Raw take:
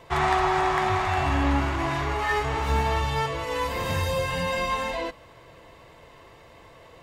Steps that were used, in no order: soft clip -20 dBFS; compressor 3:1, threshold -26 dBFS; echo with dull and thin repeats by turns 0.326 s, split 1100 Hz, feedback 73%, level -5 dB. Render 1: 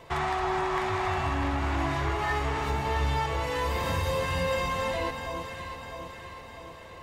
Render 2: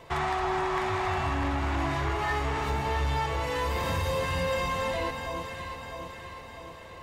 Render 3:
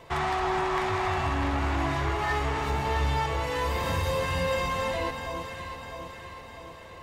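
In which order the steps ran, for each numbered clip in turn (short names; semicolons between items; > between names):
compressor > soft clip > echo with dull and thin repeats by turns; compressor > echo with dull and thin repeats by turns > soft clip; soft clip > compressor > echo with dull and thin repeats by turns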